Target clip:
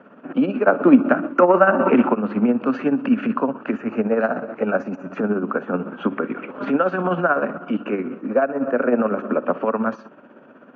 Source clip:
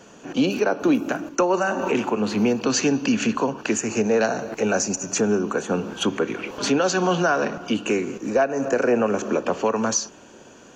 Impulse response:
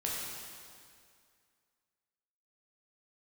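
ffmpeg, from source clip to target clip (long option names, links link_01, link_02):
-filter_complex "[0:a]asplit=3[link_01][link_02][link_03];[link_01]afade=type=out:start_time=0.66:duration=0.02[link_04];[link_02]acontrast=67,afade=type=in:start_time=0.66:duration=0.02,afade=type=out:start_time=2.12:duration=0.02[link_05];[link_03]afade=type=in:start_time=2.12:duration=0.02[link_06];[link_04][link_05][link_06]amix=inputs=3:normalize=0,tremolo=f=16:d=0.56,highpass=150,equalizer=frequency=180:width_type=q:width=4:gain=4,equalizer=frequency=250:width_type=q:width=4:gain=9,equalizer=frequency=590:width_type=q:width=4:gain=7,equalizer=frequency=1300:width_type=q:width=4:gain=10,lowpass=frequency=2300:width=0.5412,lowpass=frequency=2300:width=1.3066,volume=-1dB"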